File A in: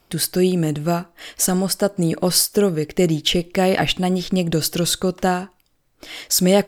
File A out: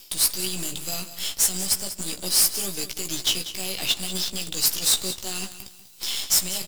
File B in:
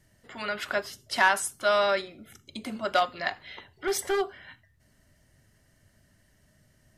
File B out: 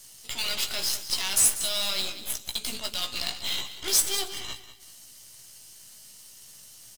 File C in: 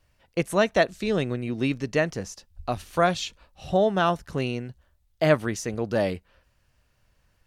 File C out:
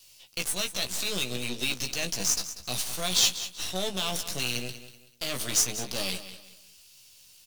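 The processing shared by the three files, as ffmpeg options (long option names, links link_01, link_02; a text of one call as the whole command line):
ffmpeg -i in.wav -filter_complex "[0:a]highpass=100,areverse,acompressor=threshold=-30dB:ratio=5,areverse,aexciter=amount=9.8:drive=8.2:freq=2600,acrossover=split=200|830[link_01][link_02][link_03];[link_03]volume=7.5dB,asoftclip=hard,volume=-7.5dB[link_04];[link_01][link_02][link_04]amix=inputs=3:normalize=0,alimiter=limit=-17.5dB:level=0:latency=1:release=84,aeval=exprs='0.133*(cos(1*acos(clip(val(0)/0.133,-1,1)))-cos(1*PI/2))+0.0133*(cos(2*acos(clip(val(0)/0.133,-1,1)))-cos(2*PI/2))+0.0266*(cos(3*acos(clip(val(0)/0.133,-1,1)))-cos(3*PI/2))+0.00596*(cos(5*acos(clip(val(0)/0.133,-1,1)))-cos(5*PI/2))+0.015*(cos(8*acos(clip(val(0)/0.133,-1,1)))-cos(8*PI/2))':channel_layout=same,asplit=2[link_05][link_06];[link_06]adelay=16,volume=-6dB[link_07];[link_05][link_07]amix=inputs=2:normalize=0,aecho=1:1:191|382|573:0.224|0.0694|0.0215" out.wav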